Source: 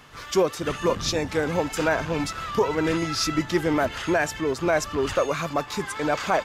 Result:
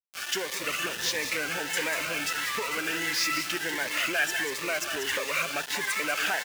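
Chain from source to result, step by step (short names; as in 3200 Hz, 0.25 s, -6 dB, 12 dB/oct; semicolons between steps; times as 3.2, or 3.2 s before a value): on a send at -19.5 dB: reverb RT60 0.60 s, pre-delay 59 ms; on the sum: compressor, threshold -23 dBFS, peak gain reduction 8 dB; in parallel at -7 dB: wavefolder -29.5 dBFS; on the sum: band shelf 2100 Hz +9 dB 1.2 oct; echo 0.192 s -9 dB; sample gate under -28.5 dBFS; HPF 860 Hz 6 dB/oct; cascading phaser rising 1.5 Hz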